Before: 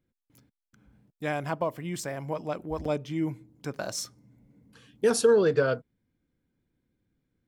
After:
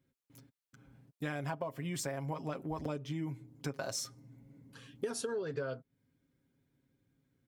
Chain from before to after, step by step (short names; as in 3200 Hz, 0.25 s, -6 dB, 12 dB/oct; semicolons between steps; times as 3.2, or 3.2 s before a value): HPF 47 Hz; comb 7.4 ms, depth 60%; compressor 12:1, threshold -34 dBFS, peak gain reduction 18 dB